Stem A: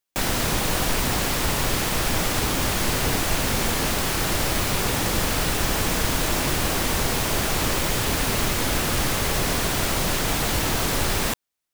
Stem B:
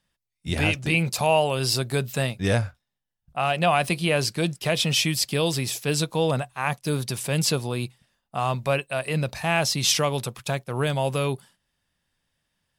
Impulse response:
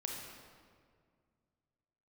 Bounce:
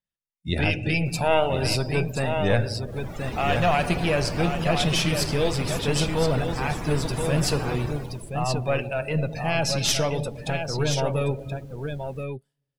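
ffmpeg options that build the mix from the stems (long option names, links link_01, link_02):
-filter_complex "[0:a]adelay=900,volume=-7dB,afade=type=in:start_time=2.82:duration=0.62:silence=0.334965,afade=type=out:start_time=7.78:duration=0.56:silence=0.237137[link_01];[1:a]equalizer=frequency=1100:width=4.9:gain=-6.5,aeval=exprs='(tanh(4.47*val(0)+0.7)-tanh(0.7))/4.47':channel_layout=same,volume=1dB,asplit=3[link_02][link_03][link_04];[link_03]volume=-4dB[link_05];[link_04]volume=-3dB[link_06];[2:a]atrim=start_sample=2205[link_07];[link_05][link_07]afir=irnorm=-1:irlink=0[link_08];[link_06]aecho=0:1:1026:1[link_09];[link_01][link_02][link_08][link_09]amix=inputs=4:normalize=0,afftdn=noise_reduction=19:noise_floor=-34,adynamicequalizer=threshold=0.0126:dfrequency=2500:dqfactor=0.7:tfrequency=2500:tqfactor=0.7:attack=5:release=100:ratio=0.375:range=2:mode=cutabove:tftype=highshelf"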